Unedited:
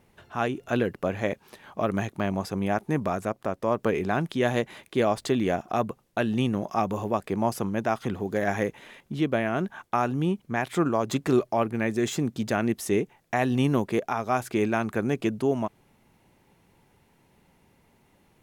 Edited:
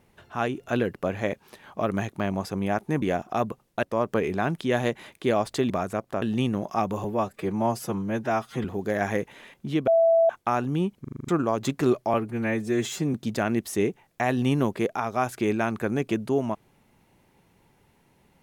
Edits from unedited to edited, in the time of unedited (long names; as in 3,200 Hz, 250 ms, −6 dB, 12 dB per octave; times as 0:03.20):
0:03.02–0:03.54: swap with 0:05.41–0:06.22
0:07.04–0:08.11: time-stretch 1.5×
0:09.34–0:09.76: beep over 662 Hz −15.5 dBFS
0:10.47: stutter in place 0.04 s, 7 plays
0:11.60–0:12.27: time-stretch 1.5×